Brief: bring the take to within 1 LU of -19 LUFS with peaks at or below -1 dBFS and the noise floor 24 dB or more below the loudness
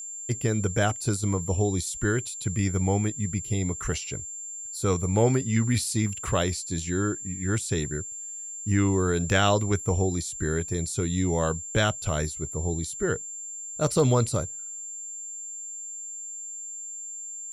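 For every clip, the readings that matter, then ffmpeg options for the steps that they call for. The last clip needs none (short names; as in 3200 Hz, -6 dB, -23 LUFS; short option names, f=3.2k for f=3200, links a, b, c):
steady tone 7300 Hz; tone level -35 dBFS; loudness -27.5 LUFS; peak -9.5 dBFS; loudness target -19.0 LUFS
-> -af "bandreject=f=7.3k:w=30"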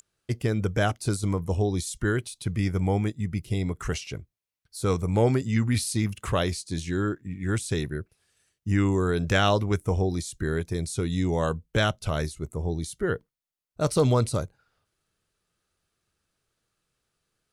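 steady tone none; loudness -27.0 LUFS; peak -10.0 dBFS; loudness target -19.0 LUFS
-> -af "volume=8dB"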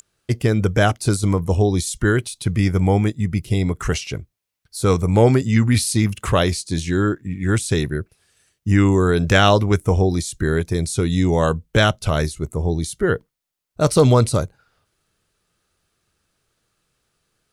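loudness -19.0 LUFS; peak -2.0 dBFS; noise floor -77 dBFS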